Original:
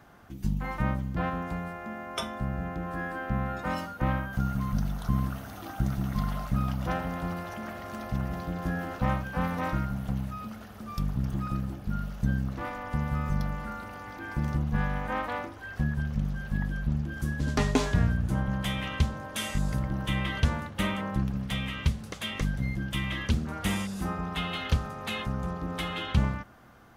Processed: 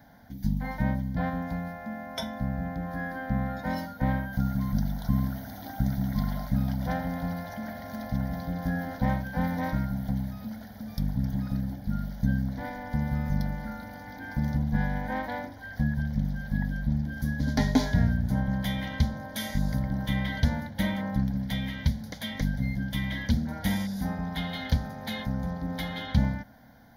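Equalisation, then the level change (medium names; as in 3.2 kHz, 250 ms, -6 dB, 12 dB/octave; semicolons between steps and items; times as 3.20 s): peaking EQ 270 Hz +12.5 dB 0.99 oct; treble shelf 7.3 kHz +9 dB; static phaser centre 1.8 kHz, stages 8; 0.0 dB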